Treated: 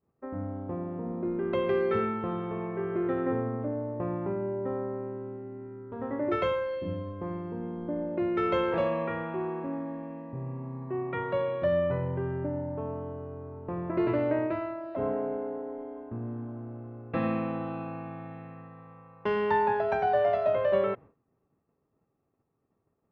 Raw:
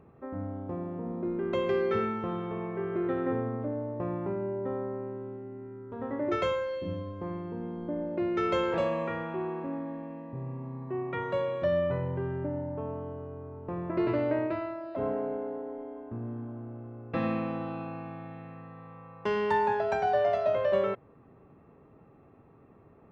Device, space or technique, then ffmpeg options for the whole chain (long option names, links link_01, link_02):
hearing-loss simulation: -af "lowpass=3300,agate=range=-33dB:threshold=-43dB:ratio=3:detection=peak,volume=1dB"